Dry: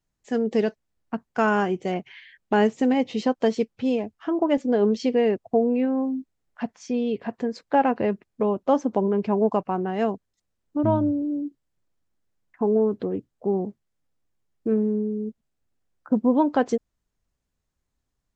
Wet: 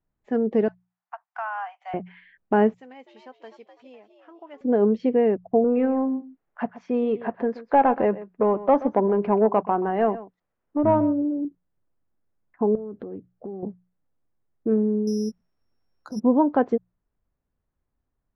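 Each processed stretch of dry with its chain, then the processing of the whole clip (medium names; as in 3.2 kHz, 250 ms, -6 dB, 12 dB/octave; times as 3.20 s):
0.68–1.94 s: steep high-pass 700 Hz 72 dB/octave + compression 3:1, threshold -28 dBFS
2.74–4.61 s: differentiator + frequency-shifting echo 251 ms, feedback 35%, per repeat +92 Hz, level -9 dB
5.64–11.45 s: overdrive pedal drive 12 dB, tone 3.6 kHz, clips at -9 dBFS + delay 128 ms -16 dB
12.75–13.63 s: band-stop 970 Hz, Q 5.3 + compression 8:1, threshold -32 dBFS
15.07–16.20 s: compressor with a negative ratio -26 dBFS + careless resampling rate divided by 8×, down none, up zero stuff
whole clip: low-pass 1.5 kHz 12 dB/octave; hum notches 60/120/180 Hz; trim +1 dB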